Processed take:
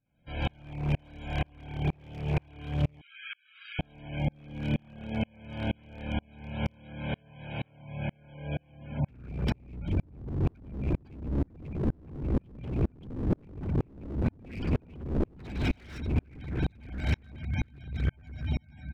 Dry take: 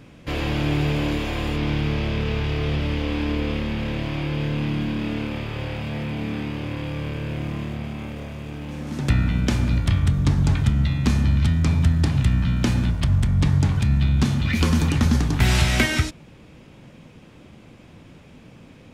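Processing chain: echo that smears into a reverb 535 ms, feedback 78%, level -10.5 dB; peak limiter -12.5 dBFS, peak gain reduction 7 dB; comb 1.3 ms, depth 56%; echo that smears into a reverb 1318 ms, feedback 69%, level -5 dB; spectral gate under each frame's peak -25 dB strong; 3.01–3.79 s: brick-wall FIR high-pass 1.1 kHz; wavefolder -15 dBFS; sawtooth tremolo in dB swelling 2.1 Hz, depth 38 dB; trim -2 dB

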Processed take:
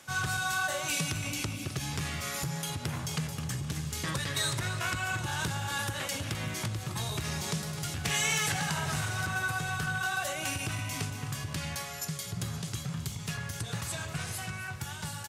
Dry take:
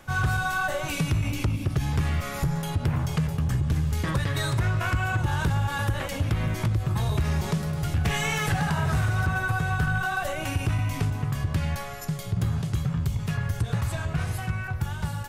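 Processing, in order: high-pass 120 Hz 12 dB/octave; peaking EQ 7.1 kHz +13 dB 2.8 oct; feedback delay 260 ms, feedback 55%, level -13.5 dB; trim -7.5 dB

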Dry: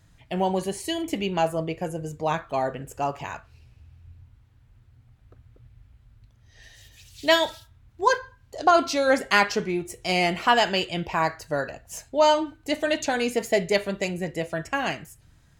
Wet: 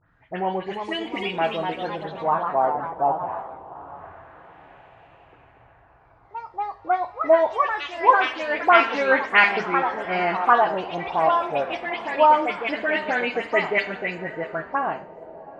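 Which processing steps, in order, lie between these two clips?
delay that grows with frequency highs late, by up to 119 ms; bass shelf 190 Hz -11.5 dB; echo that smears into a reverb 828 ms, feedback 52%, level -16 dB; LFO low-pass sine 0.24 Hz 770–2300 Hz; ever faster or slower copies 396 ms, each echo +2 st, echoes 3, each echo -6 dB; Schroeder reverb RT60 0.53 s, combs from 28 ms, DRR 15.5 dB

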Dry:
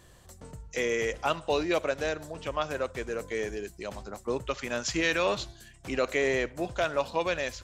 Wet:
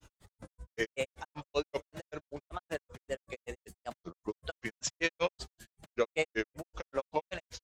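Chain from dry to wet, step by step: coarse spectral quantiser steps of 15 dB; granulator 97 ms, grains 5.2 per s, spray 18 ms, pitch spread up and down by 3 st

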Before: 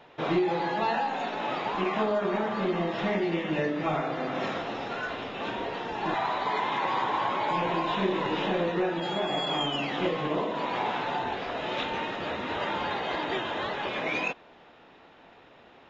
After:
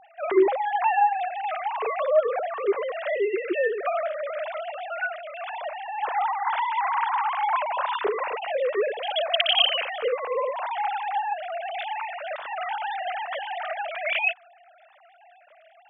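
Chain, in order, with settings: formants replaced by sine waves; trim +3 dB

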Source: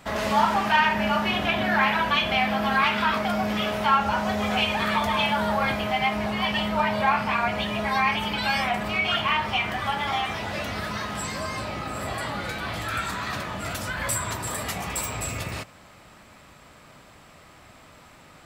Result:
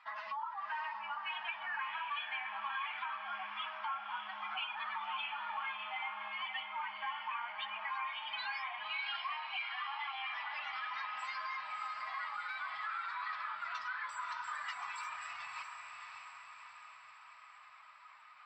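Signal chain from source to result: spectral contrast enhancement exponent 1.9; elliptic band-pass 1–5.2 kHz, stop band 40 dB; compression, threshold -35 dBFS, peak gain reduction 17.5 dB; on a send: echo that smears into a reverb 601 ms, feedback 56%, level -5 dB; on the sum: trim -4 dB

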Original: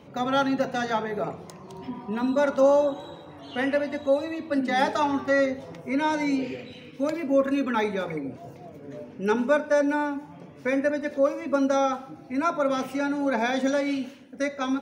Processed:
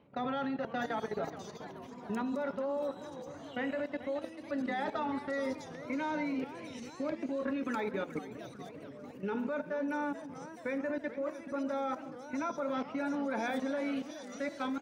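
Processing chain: level held to a coarse grid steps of 15 dB; bands offset in time lows, highs 650 ms, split 4.2 kHz; modulated delay 431 ms, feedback 62%, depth 208 cents, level -13.5 dB; trim -4 dB

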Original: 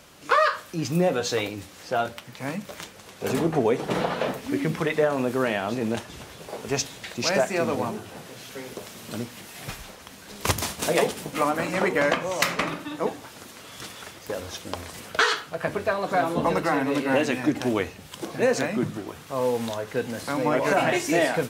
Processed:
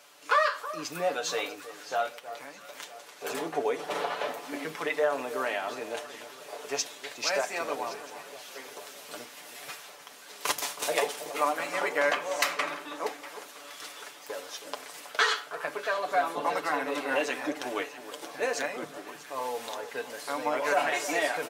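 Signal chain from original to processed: high-pass 520 Hz 12 dB/octave; comb 6.9 ms, depth 57%; 2.14–2.75 s: compression 5:1, threshold -38 dBFS, peak gain reduction 10 dB; on a send: echo whose repeats swap between lows and highs 321 ms, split 1.3 kHz, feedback 64%, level -12 dB; on the sum: trim -4.5 dB

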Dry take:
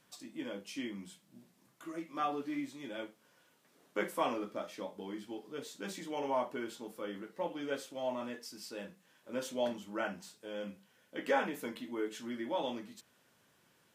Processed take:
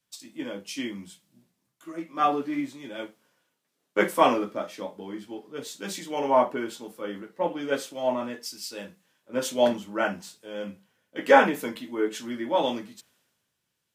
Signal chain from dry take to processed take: three bands expanded up and down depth 70%; trim +9 dB

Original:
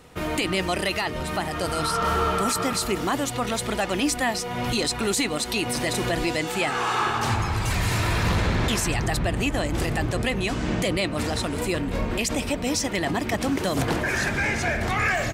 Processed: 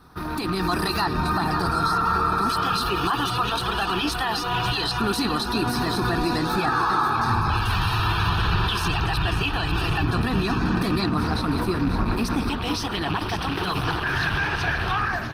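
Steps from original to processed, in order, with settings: rattle on loud lows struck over -28 dBFS, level -22 dBFS; bass shelf 250 Hz -6.5 dB; static phaser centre 2.1 kHz, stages 6; LFO notch square 0.2 Hz 240–3000 Hz; peak limiter -26 dBFS, peak gain reduction 10.5 dB; two-band feedback delay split 400 Hz, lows 341 ms, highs 543 ms, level -9.5 dB; level rider gain up to 6 dB; treble shelf 5.5 kHz -3.5 dB, from 1.05 s -10.5 dB; trim +6 dB; Opus 16 kbps 48 kHz

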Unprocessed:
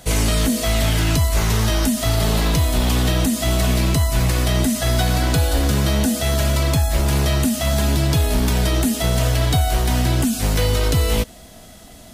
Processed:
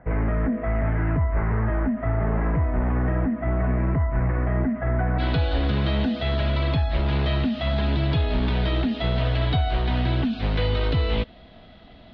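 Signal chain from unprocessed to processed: steep low-pass 2 kHz 48 dB/octave, from 5.18 s 4 kHz; trim -4.5 dB

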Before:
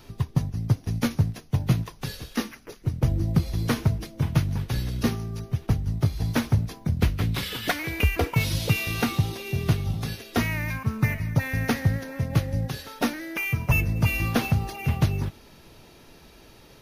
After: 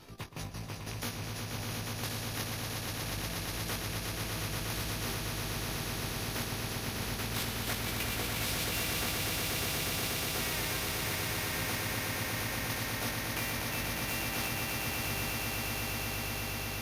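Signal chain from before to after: rattle on loud lows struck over -21 dBFS, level -27 dBFS; level held to a coarse grid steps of 15 dB; Chebyshev shaper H 4 -37 dB, 8 -38 dB, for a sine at -17 dBFS; chorus 0.25 Hz, delay 18.5 ms, depth 3.4 ms; echo with a slow build-up 120 ms, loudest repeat 8, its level -6.5 dB; spectrum-flattening compressor 2:1; trim -2.5 dB

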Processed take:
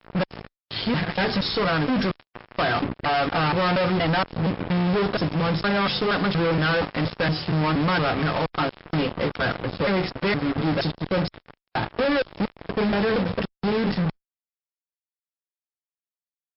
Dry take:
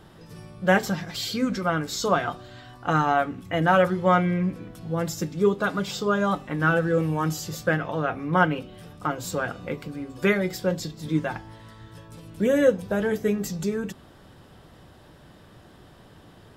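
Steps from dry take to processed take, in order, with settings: slices played last to first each 235 ms, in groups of 3; level-controlled noise filter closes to 1.1 kHz, open at -18.5 dBFS; fuzz box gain 39 dB, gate -38 dBFS; Chebyshev shaper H 2 -26 dB, 3 -27 dB, 4 -42 dB, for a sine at -10.5 dBFS; trim -6 dB; MP3 48 kbps 12 kHz

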